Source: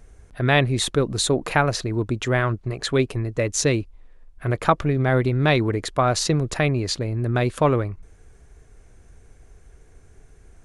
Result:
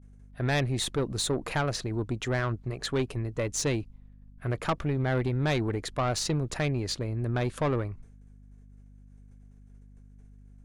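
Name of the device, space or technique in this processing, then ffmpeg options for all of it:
valve amplifier with mains hum: -af "agate=range=0.0224:threshold=0.0126:ratio=3:detection=peak,aeval=exprs='(tanh(5.62*val(0)+0.2)-tanh(0.2))/5.62':c=same,aeval=exprs='val(0)+0.00562*(sin(2*PI*50*n/s)+sin(2*PI*2*50*n/s)/2+sin(2*PI*3*50*n/s)/3+sin(2*PI*4*50*n/s)/4+sin(2*PI*5*50*n/s)/5)':c=same,volume=0.531"

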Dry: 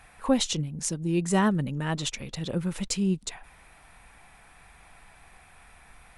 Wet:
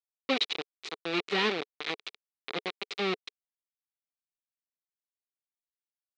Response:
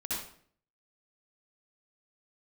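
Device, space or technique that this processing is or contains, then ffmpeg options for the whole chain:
hand-held game console: -filter_complex "[0:a]asettb=1/sr,asplit=3[s0][s1][s2];[s0]atrim=end=1.944[s3];[s1]atrim=start=1.94:end=2.97,asetpts=PTS-STARTPTS,afade=t=in:d=0.004:c=qsin,afade=t=out:st=1.026:d=0.004:c=qsin,highshelf=f=6900:g=-5[s4];[s2]atrim=start=2.966[s5];[s3][s4]acrossfade=d=0.004:c1=hsin:c2=qsin[s6];[s6][s5]acrossfade=d=0.004:c1=qsin:c2=hsin,acrusher=bits=3:mix=0:aa=0.000001,highpass=410,equalizer=f=430:t=q:w=4:g=5,equalizer=f=610:t=q:w=4:g=-9,equalizer=f=920:t=q:w=4:g=-7,equalizer=f=1600:t=q:w=4:g=-6,equalizer=f=2300:t=q:w=4:g=5,equalizer=f=3900:t=q:w=4:g=6,lowpass=f=4200:w=0.5412,lowpass=f=4200:w=1.3066,volume=0.794"

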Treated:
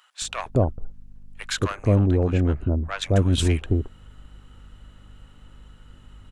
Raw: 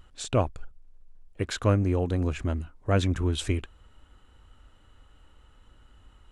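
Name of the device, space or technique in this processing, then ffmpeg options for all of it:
valve amplifier with mains hum: -filter_complex "[0:a]asettb=1/sr,asplit=3[s0][s1][s2];[s0]atrim=end=1.954[s3];[s1]atrim=start=1.95:end=3.02,asetpts=PTS-STARTPTS,afade=t=in:d=0.004:c=qsin,afade=t=out:st=1.066:d=0.004:c=qsin,lowpass=f=2000:p=1[s4];[s2]atrim=start=3.016[s5];[s3][s4]acrossfade=d=0.004:c1=hsin:c2=qsin[s6];[s6][s5]acrossfade=d=0.004:c1=qsin:c2=hsin,aeval=exprs='(tanh(7.08*val(0)+0.25)-tanh(0.25))/7.08':c=same,aeval=exprs='val(0)+0.00158*(sin(2*PI*50*n/s)+sin(2*PI*2*50*n/s)/2+sin(2*PI*3*50*n/s)/3+sin(2*PI*4*50*n/s)/4+sin(2*PI*5*50*n/s)/5)':c=same,acrossover=split=860[s7][s8];[s7]adelay=220[s9];[s9][s8]amix=inputs=2:normalize=0,volume=2.24"

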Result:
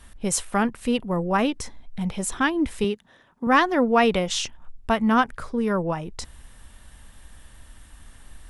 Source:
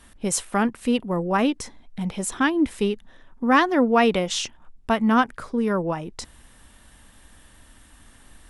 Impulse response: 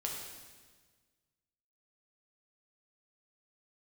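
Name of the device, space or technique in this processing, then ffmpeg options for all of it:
low shelf boost with a cut just above: -filter_complex "[0:a]asettb=1/sr,asplit=3[s0][s1][s2];[s0]atrim=end=2.844[s3];[s1]atrim=start=2.84:end=3.47,asetpts=PTS-STARTPTS,afade=t=in:d=0.004:c=qsin,afade=t=out:st=0.626:d=0.004:c=qsin,highpass=150[s4];[s2]atrim=start=3.466[s5];[s3][s4]acrossfade=d=0.004:c1=hsin:c2=qsin[s6];[s6][s5]acrossfade=d=0.004:c1=qsin:c2=hsin,lowshelf=f=100:g=7.5,equalizer=f=280:t=o:w=0.8:g=-4"

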